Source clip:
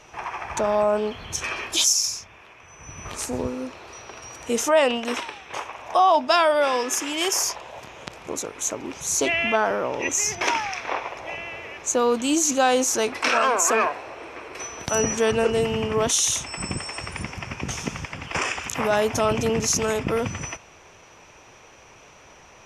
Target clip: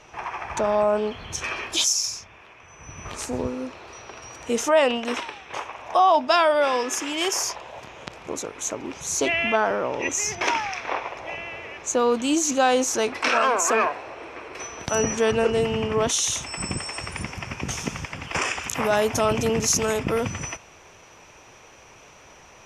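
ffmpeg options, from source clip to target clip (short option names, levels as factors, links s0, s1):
-af "asetnsamples=n=441:p=0,asendcmd='16.43 highshelf g 4.5',highshelf=f=9600:g=-9.5"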